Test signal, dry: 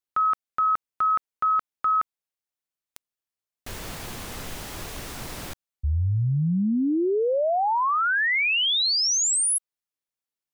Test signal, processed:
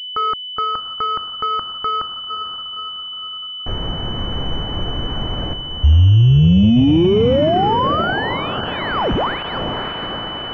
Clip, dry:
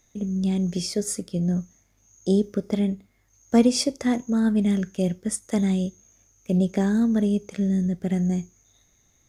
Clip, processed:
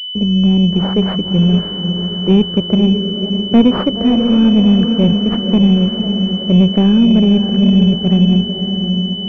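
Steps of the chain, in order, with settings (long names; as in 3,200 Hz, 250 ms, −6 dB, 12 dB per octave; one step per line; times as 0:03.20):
noise gate −55 dBFS, range −36 dB
on a send: feedback delay with all-pass diffusion 544 ms, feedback 56%, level −7.5 dB
on the sum: leveller curve on the samples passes 1
in parallel at −4 dB: soft clipping −18.5 dBFS
on the sum: low-shelf EQ 270 Hz +8 dB
switching amplifier with a slow clock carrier 3,000 Hz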